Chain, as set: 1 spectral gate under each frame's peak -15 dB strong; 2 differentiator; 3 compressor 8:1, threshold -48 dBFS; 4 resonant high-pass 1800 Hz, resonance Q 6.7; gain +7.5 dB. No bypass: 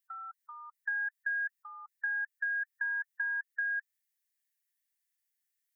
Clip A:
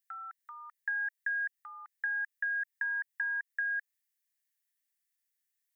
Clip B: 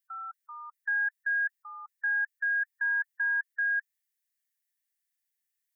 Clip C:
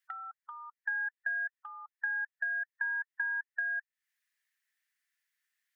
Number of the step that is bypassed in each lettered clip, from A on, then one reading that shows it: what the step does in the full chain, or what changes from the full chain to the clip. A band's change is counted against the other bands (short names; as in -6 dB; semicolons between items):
1, crest factor change +2.0 dB; 3, mean gain reduction 4.5 dB; 2, crest factor change +2.5 dB